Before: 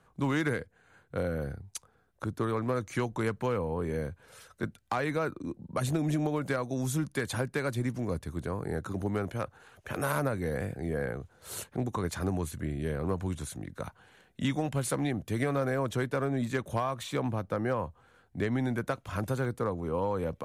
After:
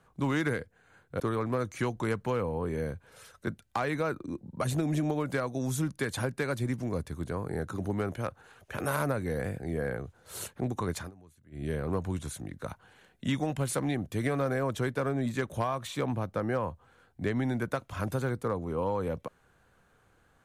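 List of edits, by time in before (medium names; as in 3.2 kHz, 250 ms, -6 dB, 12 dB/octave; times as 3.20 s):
1.20–2.36 s: delete
12.14–12.80 s: dip -23.5 dB, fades 0.13 s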